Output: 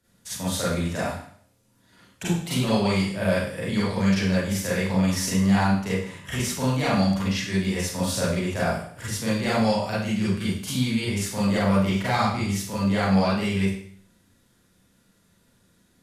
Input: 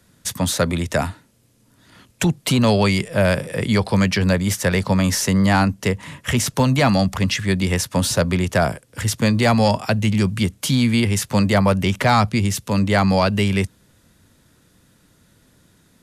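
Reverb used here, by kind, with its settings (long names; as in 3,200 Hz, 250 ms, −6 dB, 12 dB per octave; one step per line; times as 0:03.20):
four-comb reverb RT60 0.57 s, combs from 32 ms, DRR −9 dB
level −15.5 dB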